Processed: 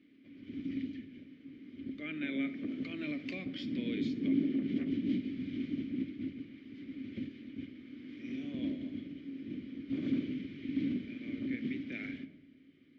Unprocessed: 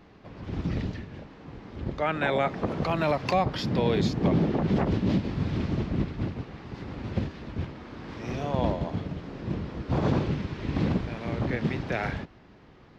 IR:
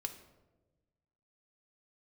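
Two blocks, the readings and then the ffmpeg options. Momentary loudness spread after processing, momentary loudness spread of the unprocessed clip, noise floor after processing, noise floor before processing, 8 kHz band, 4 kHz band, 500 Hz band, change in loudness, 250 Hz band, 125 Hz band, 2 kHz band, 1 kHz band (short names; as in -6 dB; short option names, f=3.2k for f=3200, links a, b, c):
14 LU, 15 LU, -60 dBFS, -53 dBFS, n/a, -10.5 dB, -18.0 dB, -9.0 dB, -5.0 dB, -19.5 dB, -10.5 dB, under -30 dB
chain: -filter_complex "[0:a]asplit=3[a][b][c];[a]bandpass=f=270:t=q:w=8,volume=0dB[d];[b]bandpass=f=2.29k:t=q:w=8,volume=-6dB[e];[c]bandpass=f=3.01k:t=q:w=8,volume=-9dB[f];[d][e][f]amix=inputs=3:normalize=0,asplit=2[g][h];[1:a]atrim=start_sample=2205,highshelf=f=6.3k:g=10[i];[h][i]afir=irnorm=-1:irlink=0,volume=6.5dB[j];[g][j]amix=inputs=2:normalize=0,volume=-7.5dB"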